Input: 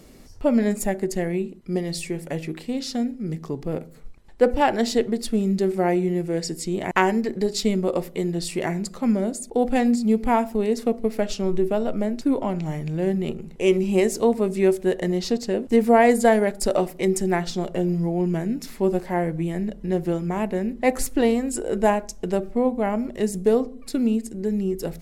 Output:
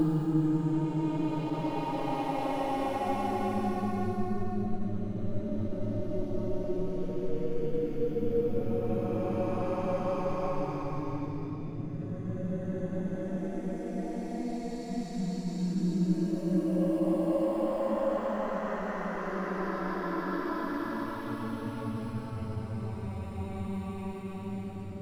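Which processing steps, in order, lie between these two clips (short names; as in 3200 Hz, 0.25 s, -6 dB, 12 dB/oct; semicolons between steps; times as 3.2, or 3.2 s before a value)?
grains, pitch spread up and down by 12 st; Paulstretch 14×, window 0.25 s, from 11.1; attack slew limiter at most 220 dB/s; gain -7.5 dB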